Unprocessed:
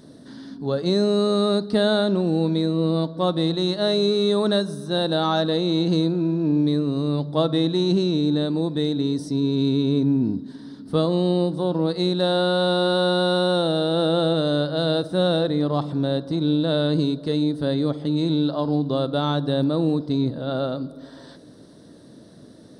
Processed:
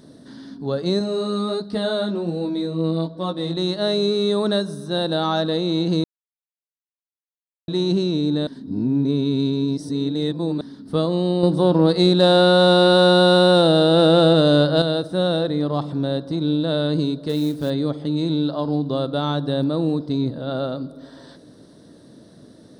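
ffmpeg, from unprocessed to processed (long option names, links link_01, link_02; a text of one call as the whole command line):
ffmpeg -i in.wav -filter_complex "[0:a]asettb=1/sr,asplit=3[link_01][link_02][link_03];[link_01]atrim=end=0.994[link_04];[link_02]atrim=start=0.99:end=3.57,asetpts=PTS-STARTPTS,afade=type=in:duration=0.004:curve=qsin,afade=type=out:start_time=2.576:duration=0.004:curve=qsin,flanger=delay=15.5:depth=3.4:speed=1.3[link_05];[link_03]atrim=start=3.566[link_06];[link_04][link_05]acrossfade=duration=0.004:curve1=hsin:curve2=qsin[link_07];[link_07][link_06]acrossfade=duration=0.004:curve1=qsin:curve2=hsin,asettb=1/sr,asplit=3[link_08][link_09][link_10];[link_08]atrim=end=11.434[link_11];[link_09]atrim=start=11.43:end=14.82,asetpts=PTS-STARTPTS,afade=type=in:duration=0.004:curve=qsin,afade=type=out:start_time=3.386:duration=0.004:curve=qsin,acontrast=81[link_12];[link_10]atrim=start=14.816[link_13];[link_11][link_12]acrossfade=duration=0.004:curve1=hsin:curve2=qsin[link_14];[link_14][link_13]acrossfade=duration=0.004:curve1=qsin:curve2=hsin,asettb=1/sr,asplit=3[link_15][link_16][link_17];[link_15]atrim=end=17.294[link_18];[link_16]atrim=start=17.29:end=17.7,asetpts=PTS-STARTPTS,afade=type=in:duration=0.004:curve=qsin,afade=type=out:start_time=0.406:duration=0.004:curve=qsin,acrusher=bits=6:mode=log:mix=0:aa=0.000001[link_19];[link_17]atrim=start=17.696[link_20];[link_18][link_19]acrossfade=duration=0.004:curve1=hsin:curve2=qsin[link_21];[link_21][link_20]acrossfade=duration=0.004:curve1=qsin:curve2=hsin,asplit=5[link_22][link_23][link_24][link_25][link_26];[link_22]atrim=end=6.04,asetpts=PTS-STARTPTS,afade=type=out:start_time=6.036:duration=0.004:curve=hsin[link_27];[link_23]atrim=start=6.04:end=7.68,asetpts=PTS-STARTPTS,volume=0[link_28];[link_24]atrim=start=7.68:end=8.472,asetpts=PTS-STARTPTS,afade=type=in:duration=0.004:curve=hsin[link_29];[link_25]atrim=start=8.468:end=10.612,asetpts=PTS-STARTPTS,areverse[link_30];[link_26]atrim=start=10.608[link_31];[link_27][link_28][link_29]concat=n=3:v=0:a=1[link_32];[link_32][link_30]acrossfade=duration=0.004:curve1=hsin:curve2=hsin[link_33];[link_33][link_31]acrossfade=duration=0.004:curve1=hsin:curve2=hsin" out.wav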